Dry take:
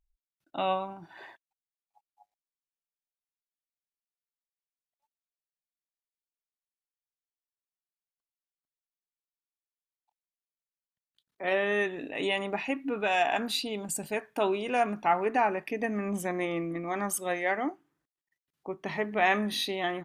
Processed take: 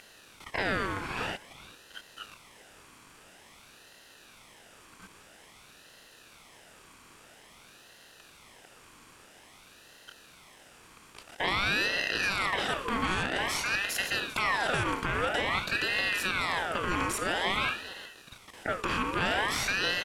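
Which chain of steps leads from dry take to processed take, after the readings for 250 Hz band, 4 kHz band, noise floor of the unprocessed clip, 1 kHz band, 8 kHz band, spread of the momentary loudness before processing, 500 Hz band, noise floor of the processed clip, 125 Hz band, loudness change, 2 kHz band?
−4.0 dB, +5.5 dB, below −85 dBFS, −1.5 dB, +1.5 dB, 10 LU, −5.5 dB, −56 dBFS, +3.5 dB, +0.5 dB, +5.0 dB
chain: compressor on every frequency bin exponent 0.4
graphic EQ with 15 bands 400 Hz +7 dB, 1,600 Hz +6 dB, 6,300 Hz +6 dB
single-tap delay 391 ms −18 dB
brickwall limiter −10.5 dBFS, peak gain reduction 8 dB
ring modulator whose carrier an LFO sweeps 1,500 Hz, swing 55%, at 0.5 Hz
level −5.5 dB

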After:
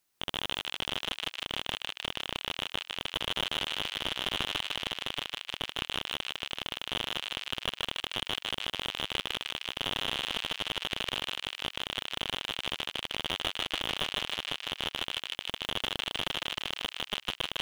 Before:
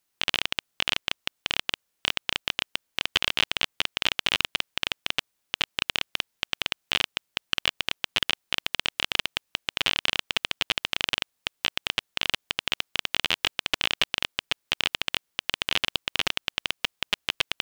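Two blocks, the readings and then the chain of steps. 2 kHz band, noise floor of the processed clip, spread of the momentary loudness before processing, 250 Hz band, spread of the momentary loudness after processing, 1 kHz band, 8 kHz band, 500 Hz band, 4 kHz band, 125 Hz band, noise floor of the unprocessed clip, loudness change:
−8.0 dB, −66 dBFS, 5 LU, −0.5 dB, 4 LU, −2.5 dB, −6.0 dB, −0.5 dB, −5.0 dB, −0.5 dB, −77 dBFS, −5.5 dB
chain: feedback echo with a high-pass in the loop 154 ms, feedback 57%, high-pass 410 Hz, level −6 dB
slew-rate limiting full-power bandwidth 230 Hz

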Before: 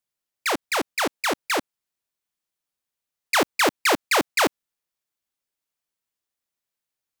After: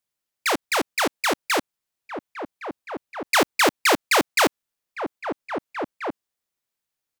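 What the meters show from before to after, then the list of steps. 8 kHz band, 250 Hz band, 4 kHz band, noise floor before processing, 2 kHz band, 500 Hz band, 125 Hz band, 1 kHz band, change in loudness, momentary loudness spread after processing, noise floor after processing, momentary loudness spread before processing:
+1.5 dB, +2.0 dB, +1.5 dB, below −85 dBFS, +1.5 dB, +2.0 dB, +2.5 dB, +2.0 dB, 0.0 dB, 18 LU, −85 dBFS, 7 LU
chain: slap from a distant wall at 280 metres, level −7 dB
level +1.5 dB

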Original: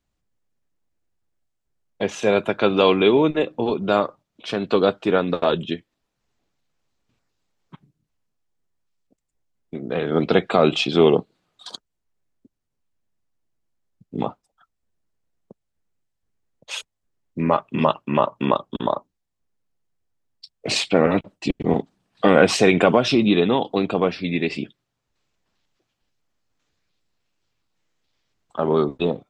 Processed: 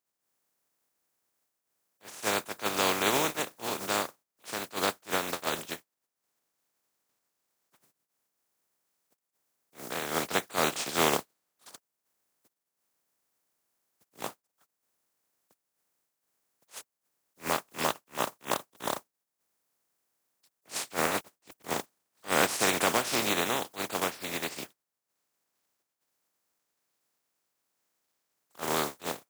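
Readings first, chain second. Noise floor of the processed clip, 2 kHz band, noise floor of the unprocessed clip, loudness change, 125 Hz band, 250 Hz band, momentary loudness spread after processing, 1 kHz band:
below −85 dBFS, −5.0 dB, −78 dBFS, −10.0 dB, −17.0 dB, −16.5 dB, 15 LU, −7.5 dB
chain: compressing power law on the bin magnitudes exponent 0.26
high-pass filter 290 Hz 6 dB per octave
parametric band 3,200 Hz −7 dB 1.6 octaves
level that may rise only so fast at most 320 dB per second
level −7.5 dB

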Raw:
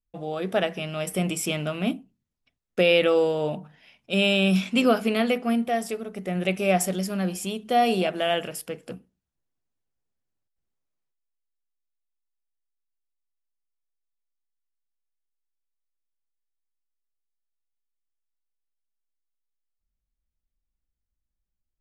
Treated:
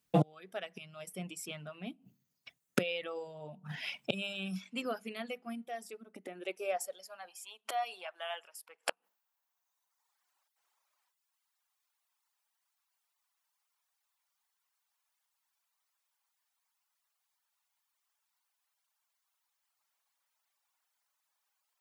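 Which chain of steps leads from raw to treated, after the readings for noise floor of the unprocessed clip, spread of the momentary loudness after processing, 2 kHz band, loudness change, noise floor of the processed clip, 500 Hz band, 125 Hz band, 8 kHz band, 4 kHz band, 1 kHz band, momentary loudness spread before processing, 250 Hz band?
−83 dBFS, 13 LU, −13.0 dB, −15.0 dB, −84 dBFS, −15.5 dB, −10.0 dB, −12.5 dB, −13.5 dB, −13.0 dB, 14 LU, −15.5 dB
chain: gate with flip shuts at −27 dBFS, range −29 dB
low-shelf EQ 390 Hz −9.5 dB
high-pass filter sweep 140 Hz → 900 Hz, 0:05.60–0:07.42
reverb reduction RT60 1.5 s
level +15.5 dB

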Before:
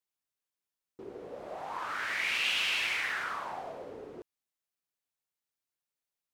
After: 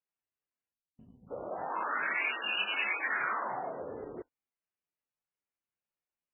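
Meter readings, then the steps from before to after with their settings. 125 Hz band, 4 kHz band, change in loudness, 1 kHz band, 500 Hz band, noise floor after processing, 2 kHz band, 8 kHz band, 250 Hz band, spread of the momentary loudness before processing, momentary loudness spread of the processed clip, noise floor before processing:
+1.0 dB, −5.5 dB, −1.5 dB, +3.0 dB, +2.5 dB, below −85 dBFS, −0.5 dB, below −35 dB, +2.5 dB, 19 LU, 13 LU, below −85 dBFS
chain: gain on a spectral selection 0:00.73–0:01.31, 260–3,000 Hz −30 dB
leveller curve on the samples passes 1
high-frequency loss of the air 130 metres
MP3 8 kbit/s 12,000 Hz

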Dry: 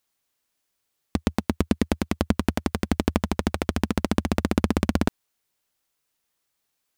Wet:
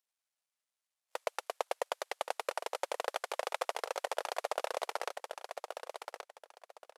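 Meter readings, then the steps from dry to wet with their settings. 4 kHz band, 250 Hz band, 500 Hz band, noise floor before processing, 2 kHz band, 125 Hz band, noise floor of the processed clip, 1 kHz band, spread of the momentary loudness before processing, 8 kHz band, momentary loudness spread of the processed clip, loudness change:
−6.5 dB, −37.5 dB, −6.5 dB, −77 dBFS, −7.0 dB, below −40 dB, below −85 dBFS, −4.0 dB, 4 LU, −6.5 dB, 10 LU, −12.5 dB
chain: variable-slope delta modulation 64 kbit/s
noise reduction from a noise print of the clip's start 14 dB
speech leveller 2 s
Butterworth high-pass 510 Hz 48 dB per octave
repeating echo 1,126 ms, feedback 24%, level −7 dB
level +1 dB

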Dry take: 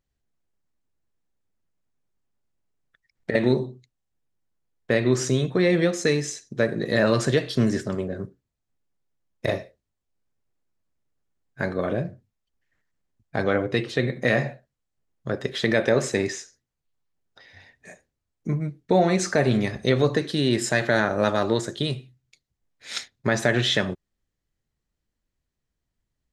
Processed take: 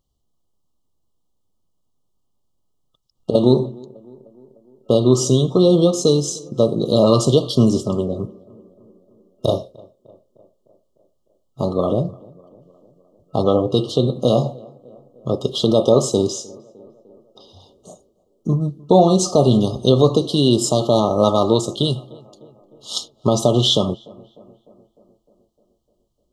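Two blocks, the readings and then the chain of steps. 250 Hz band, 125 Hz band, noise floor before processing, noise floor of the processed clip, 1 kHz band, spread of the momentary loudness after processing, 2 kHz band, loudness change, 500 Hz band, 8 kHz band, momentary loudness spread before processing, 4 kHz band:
+7.0 dB, +7.0 dB, −82 dBFS, −67 dBFS, +6.5 dB, 13 LU, below −25 dB, +6.5 dB, +7.0 dB, +7.0 dB, 12 LU, +7.0 dB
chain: tape delay 303 ms, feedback 68%, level −22.5 dB, low-pass 1,400 Hz
brick-wall band-stop 1,300–2,800 Hz
level +7 dB

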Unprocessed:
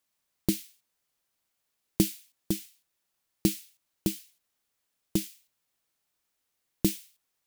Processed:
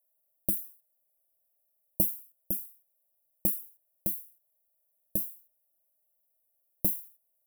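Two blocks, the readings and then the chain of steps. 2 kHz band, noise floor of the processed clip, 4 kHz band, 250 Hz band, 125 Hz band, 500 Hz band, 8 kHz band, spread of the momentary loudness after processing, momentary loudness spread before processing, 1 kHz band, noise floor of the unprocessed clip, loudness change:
below −25 dB, −76 dBFS, below −25 dB, −11.5 dB, −8.0 dB, −7.5 dB, −3.0 dB, 15 LU, 13 LU, can't be measured, −80 dBFS, +1.0 dB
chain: drawn EQ curve 110 Hz 0 dB, 390 Hz −10 dB, 610 Hz +13 dB, 1,300 Hz −23 dB, 2,200 Hz −20 dB, 5,000 Hz −24 dB, 12,000 Hz +13 dB
level −5.5 dB

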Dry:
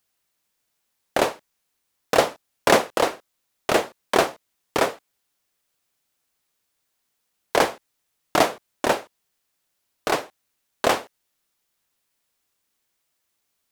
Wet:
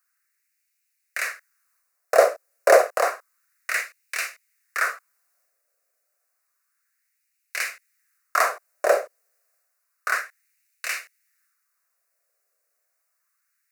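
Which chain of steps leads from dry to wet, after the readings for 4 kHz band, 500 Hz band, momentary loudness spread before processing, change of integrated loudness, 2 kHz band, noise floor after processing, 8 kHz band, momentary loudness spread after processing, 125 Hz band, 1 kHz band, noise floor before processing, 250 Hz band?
−8.5 dB, +0.5 dB, 8 LU, −0.5 dB, +2.0 dB, −75 dBFS, −1.0 dB, 17 LU, below −30 dB, −2.5 dB, −76 dBFS, −18.0 dB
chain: phaser with its sweep stopped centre 890 Hz, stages 6
auto-filter high-pass sine 0.3 Hz 560–2,500 Hz
transient designer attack −3 dB, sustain +4 dB
level +1.5 dB

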